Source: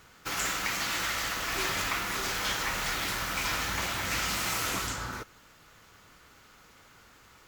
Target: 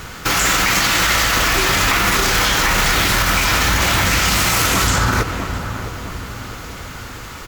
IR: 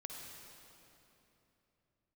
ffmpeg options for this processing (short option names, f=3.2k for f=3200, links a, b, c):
-filter_complex "[0:a]lowshelf=f=130:g=7.5,asplit=2[a][b];[b]adelay=656,lowpass=f=1.2k:p=1,volume=-13dB,asplit=2[c][d];[d]adelay=656,lowpass=f=1.2k:p=1,volume=0.51,asplit=2[e][f];[f]adelay=656,lowpass=f=1.2k:p=1,volume=0.51,asplit=2[g][h];[h]adelay=656,lowpass=f=1.2k:p=1,volume=0.51,asplit=2[i][j];[j]adelay=656,lowpass=f=1.2k:p=1,volume=0.51[k];[c][e][g][i][k]amix=inputs=5:normalize=0[l];[a][l]amix=inputs=2:normalize=0,alimiter=level_in=28dB:limit=-1dB:release=50:level=0:latency=1,volume=-5.5dB"